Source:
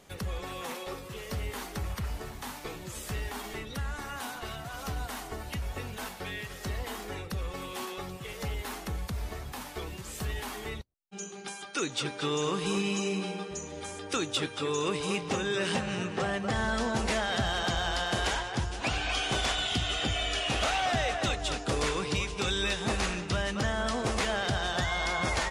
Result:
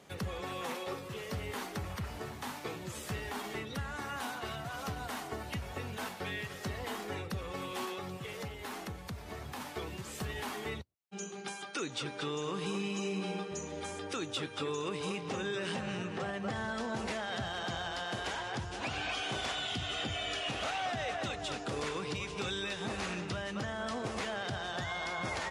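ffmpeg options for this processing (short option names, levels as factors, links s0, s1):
-filter_complex "[0:a]asettb=1/sr,asplit=3[s0][s1][s2];[s0]atrim=end=7.944[s3];[s1]atrim=start=7.94:end=9.6,asetpts=PTS-STARTPTS,afade=t=in:d=0.004:c=qsin,afade=t=out:st=1.656:d=0.004:c=qsin,acompressor=threshold=0.0158:ratio=4:attack=3.2:release=140:knee=1:detection=peak[s4];[s2]atrim=start=9.596[s5];[s3][s4]acrossfade=d=0.004:c1=hsin:c2=qsin[s6];[s6][s5]acrossfade=d=0.004:c1=qsin:c2=hsin,highpass=f=80:w=0.5412,highpass=f=80:w=1.3066,highshelf=f=5500:g=-6,alimiter=level_in=1.41:limit=0.0631:level=0:latency=1:release=187,volume=0.708"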